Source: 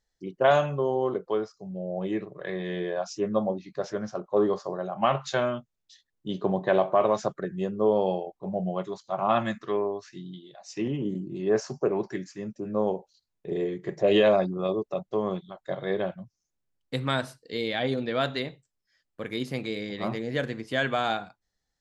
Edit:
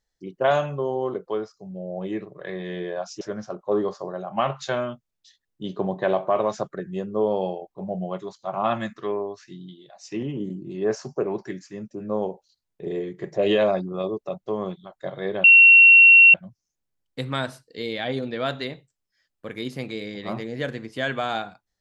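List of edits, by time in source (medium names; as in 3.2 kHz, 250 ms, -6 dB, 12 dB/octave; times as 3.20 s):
3.21–3.86 s: delete
16.09 s: add tone 2.73 kHz -7.5 dBFS 0.90 s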